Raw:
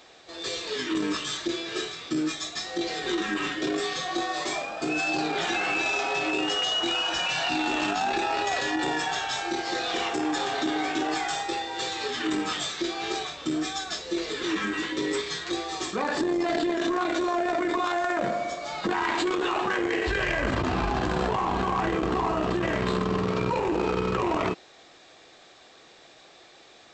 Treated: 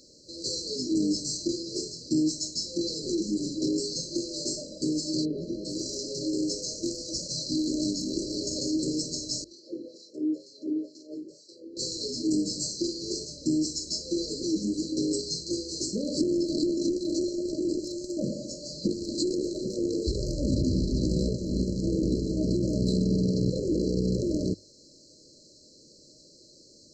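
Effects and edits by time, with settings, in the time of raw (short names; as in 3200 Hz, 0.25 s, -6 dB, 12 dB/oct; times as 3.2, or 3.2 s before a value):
5.24–5.64 LPF 1300 Hz -> 2500 Hz
7.38–8.13 echo throw 0.48 s, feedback 70%, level -8.5 dB
9.44–11.77 LFO band-pass sine 2.1 Hz 290–2200 Hz
whole clip: band shelf 610 Hz -8 dB; FFT band-reject 630–4000 Hz; notches 50/100 Hz; gain +4.5 dB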